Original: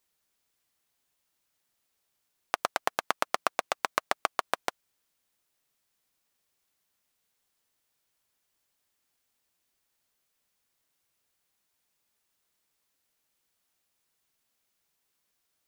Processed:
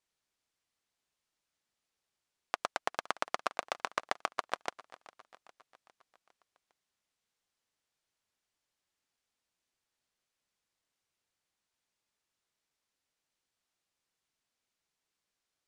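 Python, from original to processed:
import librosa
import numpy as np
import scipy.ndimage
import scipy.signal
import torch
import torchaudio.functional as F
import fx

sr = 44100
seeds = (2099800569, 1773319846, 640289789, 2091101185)

y = scipy.signal.sosfilt(scipy.signal.butter(2, 7800.0, 'lowpass', fs=sr, output='sos'), x)
y = fx.echo_feedback(y, sr, ms=405, feedback_pct=55, wet_db=-19.0)
y = y * 10.0 ** (-5.5 / 20.0)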